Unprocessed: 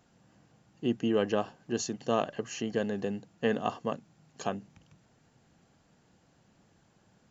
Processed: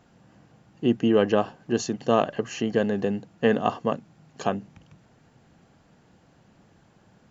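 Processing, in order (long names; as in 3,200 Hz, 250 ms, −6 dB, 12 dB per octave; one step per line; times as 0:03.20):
high-shelf EQ 5,100 Hz −9.5 dB
level +7.5 dB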